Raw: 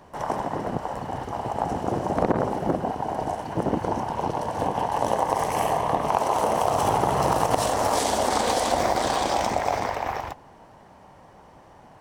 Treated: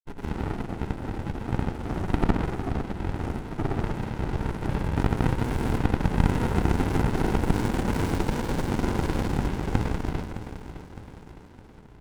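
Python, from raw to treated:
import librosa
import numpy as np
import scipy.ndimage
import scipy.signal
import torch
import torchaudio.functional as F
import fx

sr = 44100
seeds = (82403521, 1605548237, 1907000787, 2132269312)

p1 = fx.graphic_eq_15(x, sr, hz=(160, 400, 1000, 10000), db=(-12, 4, 4, 7))
p2 = fx.granulator(p1, sr, seeds[0], grain_ms=100.0, per_s=20.0, spray_ms=100.0, spread_st=0)
p3 = p2 + fx.echo_feedback(p2, sr, ms=612, feedback_pct=49, wet_db=-11.5, dry=0)
y = fx.running_max(p3, sr, window=65)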